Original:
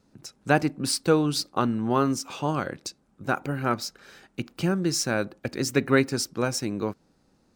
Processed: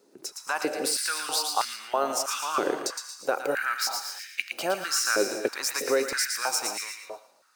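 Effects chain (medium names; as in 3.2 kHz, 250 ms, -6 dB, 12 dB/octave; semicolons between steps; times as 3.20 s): treble shelf 6.6 kHz +11 dB; peak limiter -16.5 dBFS, peak gain reduction 11.5 dB; on a send: feedback echo behind a high-pass 114 ms, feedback 32%, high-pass 1.7 kHz, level -4.5 dB; on the sum: gated-style reverb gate 280 ms rising, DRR 8 dB; step-sequenced high-pass 3.1 Hz 390–2100 Hz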